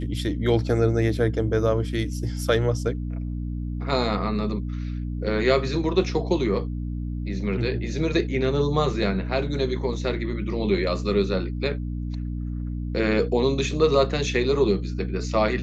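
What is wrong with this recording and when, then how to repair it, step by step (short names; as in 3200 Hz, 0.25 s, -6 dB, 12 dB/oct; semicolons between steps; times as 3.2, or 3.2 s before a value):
hum 60 Hz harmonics 5 -29 dBFS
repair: de-hum 60 Hz, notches 5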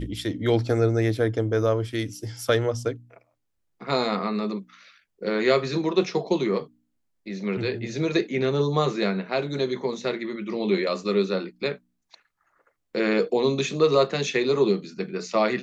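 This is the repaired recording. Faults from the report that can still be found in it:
none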